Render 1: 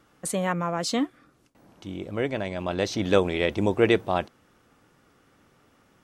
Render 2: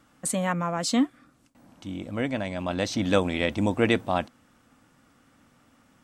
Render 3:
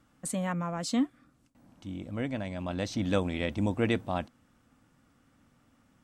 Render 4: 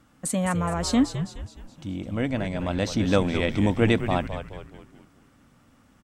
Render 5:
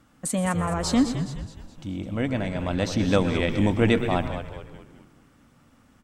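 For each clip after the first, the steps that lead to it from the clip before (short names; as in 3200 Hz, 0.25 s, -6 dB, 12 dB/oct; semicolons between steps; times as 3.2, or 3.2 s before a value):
thirty-one-band EQ 250 Hz +7 dB, 400 Hz -11 dB, 8000 Hz +5 dB
low shelf 210 Hz +7.5 dB; gain -7.5 dB
frequency-shifting echo 0.21 s, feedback 45%, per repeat -98 Hz, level -9 dB; gain +6.5 dB
reverb RT60 0.50 s, pre-delay 0.112 s, DRR 11 dB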